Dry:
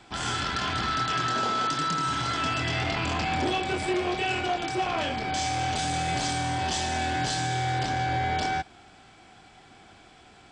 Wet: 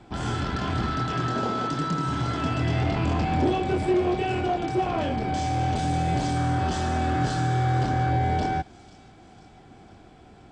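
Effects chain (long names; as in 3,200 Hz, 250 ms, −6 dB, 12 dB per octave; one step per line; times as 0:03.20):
tilt shelving filter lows +8 dB, about 910 Hz
0:06.35–0:08.10: noise in a band 1,100–1,700 Hz −41 dBFS
on a send: delay with a high-pass on its return 497 ms, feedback 56%, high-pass 4,400 Hz, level −13.5 dB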